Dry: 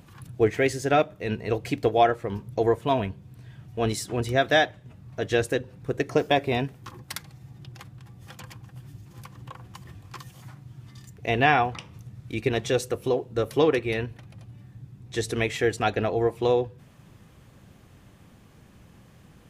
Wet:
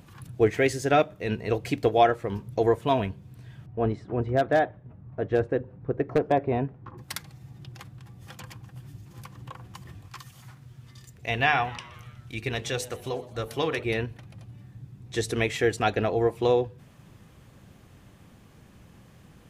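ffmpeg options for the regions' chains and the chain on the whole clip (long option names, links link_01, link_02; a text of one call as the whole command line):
ffmpeg -i in.wav -filter_complex "[0:a]asettb=1/sr,asplit=3[link_01][link_02][link_03];[link_01]atrim=end=3.664[link_04];[link_02]atrim=start=3.66:end=6.98,asetpts=PTS-STARTPTS,afade=type=in:duration=0.004:curve=qsin,afade=type=out:start_time=3.316:duration=0.004:curve=qsin,lowpass=1200,aeval=exprs='0.224*(abs(mod(val(0)/0.224+3,4)-2)-1)':channel_layout=same[link_05];[link_03]atrim=start=6.976[link_06];[link_04][link_05]acrossfade=duration=0.004:curve1=hsin:curve2=qsin[link_07];[link_07][link_06]acrossfade=duration=0.004:curve1=qsin:curve2=hsin,asettb=1/sr,asplit=3[link_08][link_09][link_10];[link_08]atrim=end=10.084[link_11];[link_09]atrim=start=10.08:end=13.84,asetpts=PTS-STARTPTS,afade=type=in:duration=0.004:curve=qsin,afade=type=out:start_time=3.756:duration=0.004:curve=qsin,equalizer=frequency=350:width_type=o:width=2.2:gain=-8,bandreject=frequency=50:width_type=h:width=6,bandreject=frequency=100:width_type=h:width=6,bandreject=frequency=150:width_type=h:width=6,bandreject=frequency=200:width_type=h:width=6,bandreject=frequency=250:width_type=h:width=6,bandreject=frequency=300:width_type=h:width=6,bandreject=frequency=350:width_type=h:width=6,bandreject=frequency=400:width_type=h:width=6,bandreject=frequency=450:width_type=h:width=6,bandreject=frequency=500:width_type=h:width=6,asplit=6[link_12][link_13][link_14][link_15][link_16][link_17];[link_13]adelay=122,afreqshift=120,volume=-20.5dB[link_18];[link_14]adelay=244,afreqshift=240,volume=-24.8dB[link_19];[link_15]adelay=366,afreqshift=360,volume=-29.1dB[link_20];[link_16]adelay=488,afreqshift=480,volume=-33.4dB[link_21];[link_17]adelay=610,afreqshift=600,volume=-37.7dB[link_22];[link_12][link_18][link_19][link_20][link_21][link_22]amix=inputs=6:normalize=0,atrim=end_sample=165816[link_23];[link_10]atrim=start=13.836[link_24];[link_11][link_23]acrossfade=duration=0.004:curve1=hsin:curve2=qsin[link_25];[link_25][link_24]acrossfade=duration=0.004:curve1=qsin:curve2=hsin" out.wav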